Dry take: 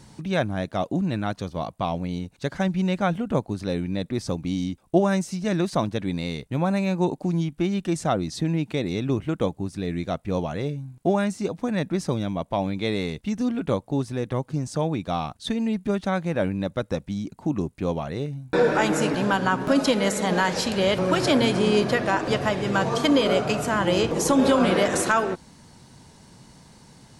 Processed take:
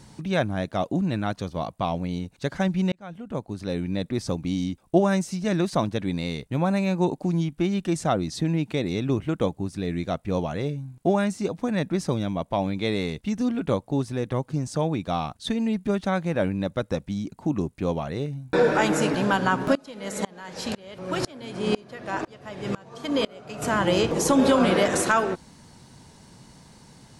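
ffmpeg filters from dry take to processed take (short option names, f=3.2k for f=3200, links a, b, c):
-filter_complex "[0:a]asettb=1/sr,asplit=3[a][b][c];[a]atrim=end=19.754[d];[b]atrim=start=19.75:end=23.62,asetpts=PTS-STARTPTS,afade=t=in:d=0.004:c=qsin,afade=t=out:st=3.866:d=0.004:c=qsin,aeval=exprs='val(0)*pow(10,-29*if(lt(mod(-2*n/s,1),2*abs(-2)/1000),1-mod(-2*n/s,1)/(2*abs(-2)/1000),(mod(-2*n/s,1)-2*abs(-2)/1000)/(1-2*abs(-2)/1000))/20)':c=same[e];[c]atrim=start=23.616[f];[d][e]acrossfade=d=0.004:c1=hsin:c2=qsin[g];[g][f]acrossfade=d=0.004:c1=qsin:c2=hsin,asplit=2[h][i];[h]atrim=end=2.92,asetpts=PTS-STARTPTS,afade=t=out:st=2.916:d=0.004:c=hsin[j];[i]atrim=start=2.92,asetpts=PTS-STARTPTS,afade=t=in:d=0.99[k];[j][k]concat=n=2:v=0:a=1"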